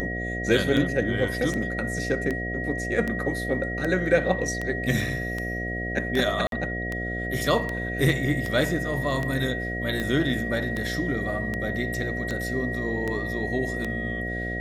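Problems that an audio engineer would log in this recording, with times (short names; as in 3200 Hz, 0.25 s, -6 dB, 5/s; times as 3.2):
buzz 60 Hz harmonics 12 -32 dBFS
tick 78 rpm -16 dBFS
tone 1900 Hz -31 dBFS
6.47–6.52 gap 52 ms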